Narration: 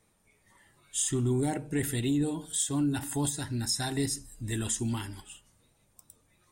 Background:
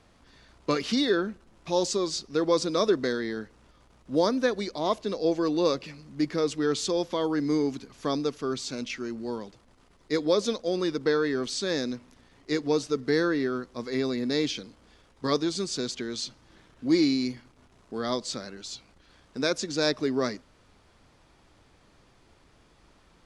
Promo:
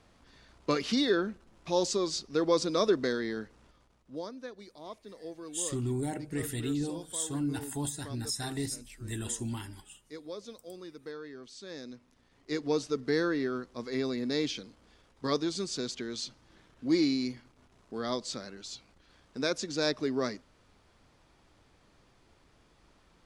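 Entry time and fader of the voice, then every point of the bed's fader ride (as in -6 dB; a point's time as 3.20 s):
4.60 s, -4.5 dB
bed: 3.65 s -2.5 dB
4.31 s -18 dB
11.49 s -18 dB
12.69 s -4 dB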